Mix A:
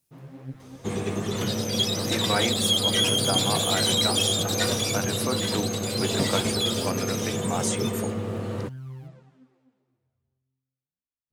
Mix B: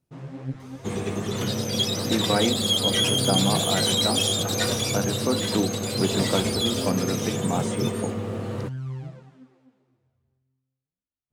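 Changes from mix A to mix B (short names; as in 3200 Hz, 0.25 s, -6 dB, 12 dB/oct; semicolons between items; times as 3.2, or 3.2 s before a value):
speech: add tilt -4 dB/oct; first sound +6.0 dB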